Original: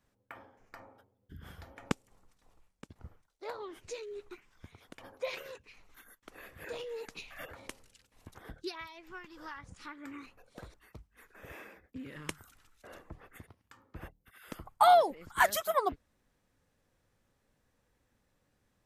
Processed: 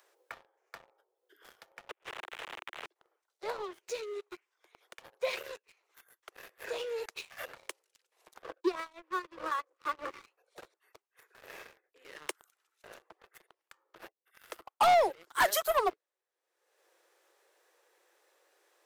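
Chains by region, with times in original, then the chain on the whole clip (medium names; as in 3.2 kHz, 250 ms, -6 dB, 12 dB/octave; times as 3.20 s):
1.89–2.86 s: one-bit delta coder 16 kbps, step -39 dBFS + inverted gate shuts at -29 dBFS, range -40 dB + spectrum-flattening compressor 2:1
8.42–10.10 s: tone controls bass -7 dB, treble -12 dB + small resonant body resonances 290/520/1100 Hz, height 18 dB, ringing for 25 ms + power-law waveshaper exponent 1.4
whole clip: steep high-pass 340 Hz 96 dB/octave; waveshaping leveller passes 3; upward compressor, threshold -44 dBFS; trim -7 dB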